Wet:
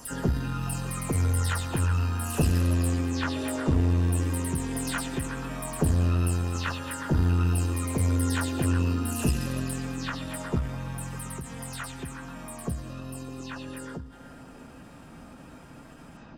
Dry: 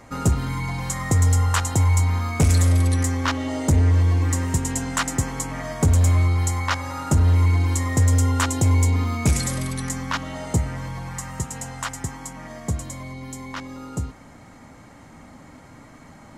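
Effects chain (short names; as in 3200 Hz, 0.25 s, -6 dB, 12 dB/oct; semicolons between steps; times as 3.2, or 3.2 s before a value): spectral delay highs early, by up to 0.203 s; on a send: delay with a stepping band-pass 0.121 s, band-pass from 3500 Hz, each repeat -0.7 oct, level -2.5 dB; on the sum: added harmonics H 4 -19 dB, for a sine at -7.5 dBFS; in parallel at -3 dB: compressor, threshold -38 dBFS, peak gain reduction 21.5 dB; on the sum: formant shift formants +3 st; low shelf 370 Hz +4.5 dB; notch 2200 Hz, Q 7.8; ending taper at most 100 dB/s; gain -8 dB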